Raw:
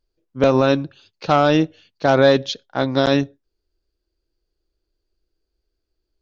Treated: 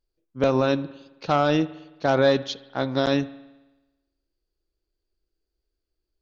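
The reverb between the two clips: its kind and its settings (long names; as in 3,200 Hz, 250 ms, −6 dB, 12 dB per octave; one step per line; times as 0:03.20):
spring reverb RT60 1.1 s, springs 54 ms, chirp 25 ms, DRR 17 dB
level −5.5 dB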